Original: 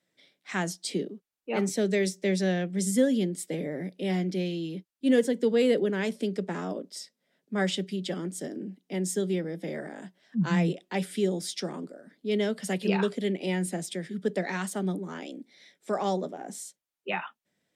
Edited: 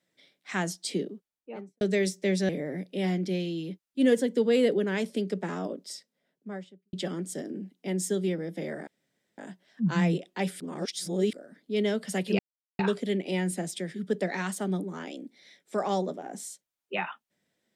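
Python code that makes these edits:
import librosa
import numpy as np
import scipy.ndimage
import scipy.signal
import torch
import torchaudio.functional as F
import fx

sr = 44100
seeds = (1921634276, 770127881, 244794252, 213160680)

y = fx.studio_fade_out(x, sr, start_s=1.1, length_s=0.71)
y = fx.studio_fade_out(y, sr, start_s=6.96, length_s=1.03)
y = fx.edit(y, sr, fx.cut(start_s=2.49, length_s=1.06),
    fx.insert_room_tone(at_s=9.93, length_s=0.51),
    fx.reverse_span(start_s=11.15, length_s=0.73),
    fx.insert_silence(at_s=12.94, length_s=0.4), tone=tone)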